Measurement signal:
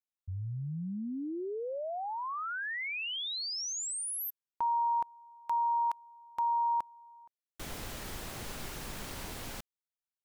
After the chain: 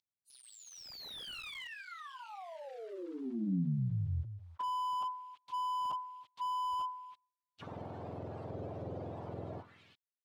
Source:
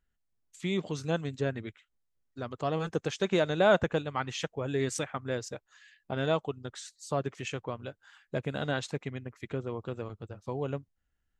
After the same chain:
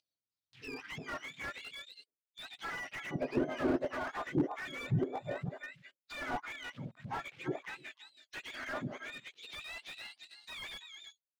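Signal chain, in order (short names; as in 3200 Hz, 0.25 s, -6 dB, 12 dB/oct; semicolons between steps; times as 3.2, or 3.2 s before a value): spectrum mirrored in octaves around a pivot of 970 Hz; expander -44 dBFS, range -25 dB; tilt -2.5 dB/oct; in parallel at -5 dB: bit-crush 8-bit; on the sum: echo 0.328 s -10 dB; upward compressor, threshold -45 dBFS; auto-wah 360–4800 Hz, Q 2.6, down, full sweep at -19 dBFS; bell 3700 Hz +6 dB 1.2 oct; slew limiter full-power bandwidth 16 Hz; gain +1.5 dB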